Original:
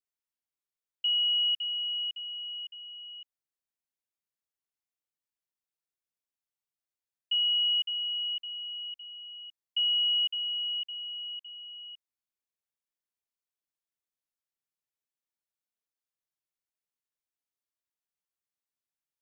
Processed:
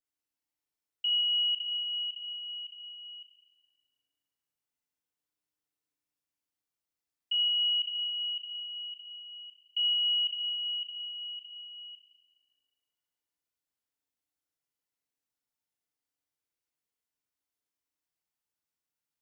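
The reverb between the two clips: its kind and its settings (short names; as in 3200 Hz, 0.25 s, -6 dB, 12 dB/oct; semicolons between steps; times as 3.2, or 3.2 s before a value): FDN reverb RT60 2.2 s, low-frequency decay 1.5×, high-frequency decay 0.75×, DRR -2 dB; gain -2 dB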